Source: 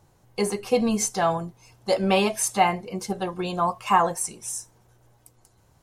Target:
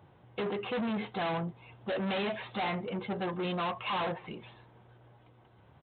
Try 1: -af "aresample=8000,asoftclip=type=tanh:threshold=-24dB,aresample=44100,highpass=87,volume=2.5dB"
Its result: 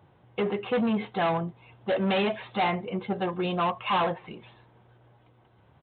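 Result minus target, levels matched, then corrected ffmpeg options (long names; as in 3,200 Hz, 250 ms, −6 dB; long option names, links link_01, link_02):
soft clipping: distortion −4 dB
-af "aresample=8000,asoftclip=type=tanh:threshold=-33dB,aresample=44100,highpass=87,volume=2.5dB"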